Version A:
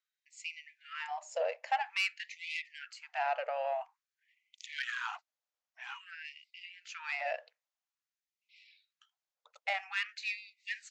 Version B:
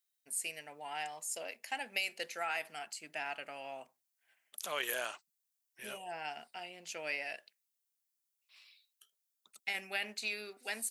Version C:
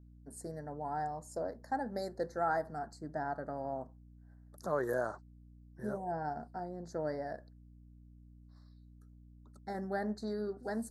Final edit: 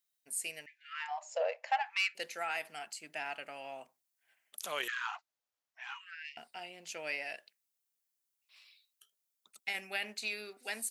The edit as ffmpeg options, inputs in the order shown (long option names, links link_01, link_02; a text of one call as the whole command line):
ffmpeg -i take0.wav -i take1.wav -filter_complex "[0:a]asplit=2[link_01][link_02];[1:a]asplit=3[link_03][link_04][link_05];[link_03]atrim=end=0.662[link_06];[link_01]atrim=start=0.658:end=2.152[link_07];[link_04]atrim=start=2.148:end=4.882[link_08];[link_02]atrim=start=4.878:end=6.372[link_09];[link_05]atrim=start=6.368[link_10];[link_06][link_07]acrossfade=duration=0.004:curve1=hsin:curve2=hsin[link_11];[link_11][link_08]acrossfade=duration=0.004:curve1=hsin:curve2=hsin[link_12];[link_12][link_09]acrossfade=duration=0.004:curve1=hsin:curve2=hsin[link_13];[link_13][link_10]acrossfade=duration=0.004:curve1=hsin:curve2=hsin" out.wav